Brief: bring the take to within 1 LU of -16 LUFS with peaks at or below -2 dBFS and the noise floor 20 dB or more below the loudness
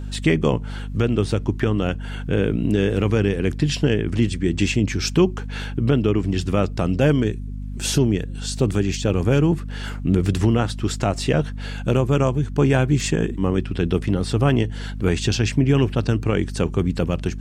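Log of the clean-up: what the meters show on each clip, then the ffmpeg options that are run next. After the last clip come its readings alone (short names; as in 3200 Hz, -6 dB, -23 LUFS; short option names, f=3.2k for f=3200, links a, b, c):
hum 50 Hz; harmonics up to 250 Hz; hum level -28 dBFS; loudness -21.5 LUFS; peak -6.0 dBFS; loudness target -16.0 LUFS
-> -af "bandreject=f=50:t=h:w=6,bandreject=f=100:t=h:w=6,bandreject=f=150:t=h:w=6,bandreject=f=200:t=h:w=6,bandreject=f=250:t=h:w=6"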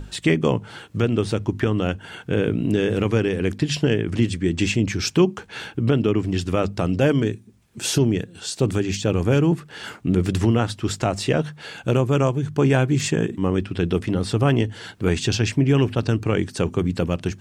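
hum none; loudness -22.0 LUFS; peak -6.0 dBFS; loudness target -16.0 LUFS
-> -af "volume=6dB,alimiter=limit=-2dB:level=0:latency=1"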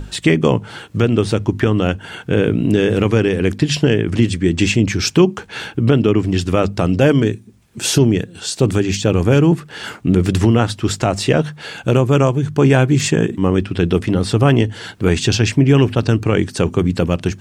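loudness -16.0 LUFS; peak -2.0 dBFS; noise floor -41 dBFS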